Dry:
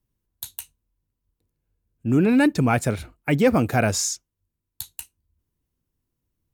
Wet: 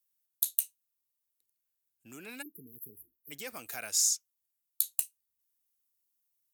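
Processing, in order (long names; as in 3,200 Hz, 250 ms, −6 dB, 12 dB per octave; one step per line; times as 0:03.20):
downward compressor 2 to 1, threshold −27 dBFS, peak gain reduction 8 dB
first difference
time-frequency box erased 0:02.42–0:03.31, 460–11,000 Hz
level +3 dB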